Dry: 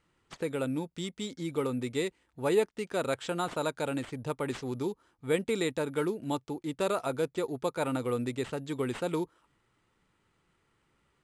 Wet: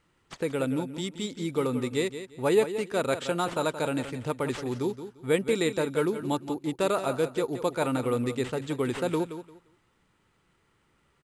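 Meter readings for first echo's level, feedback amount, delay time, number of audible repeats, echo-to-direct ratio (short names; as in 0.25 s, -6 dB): -11.0 dB, 22%, 0.174 s, 2, -11.0 dB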